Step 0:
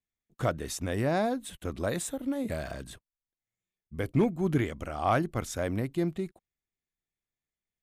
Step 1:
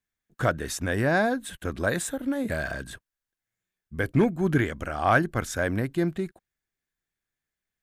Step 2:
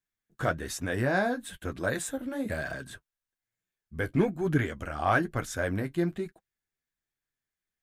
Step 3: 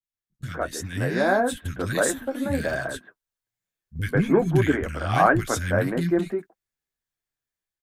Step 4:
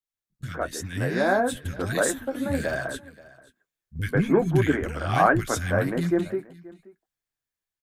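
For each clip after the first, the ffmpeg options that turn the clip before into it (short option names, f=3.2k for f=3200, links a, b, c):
-af "equalizer=f=1.6k:t=o:w=0.34:g=10.5,volume=3.5dB"
-af "flanger=delay=6.1:depth=7:regen=-33:speed=1.1:shape=triangular"
-filter_complex "[0:a]acrossover=split=220|1900[a][b][c];[c]adelay=30[d];[b]adelay=140[e];[a][e][d]amix=inputs=3:normalize=0,agate=range=-7dB:threshold=-43dB:ratio=16:detection=peak,dynaudnorm=f=690:g=3:m=8.5dB"
-af "aecho=1:1:529:0.0841,volume=-1dB"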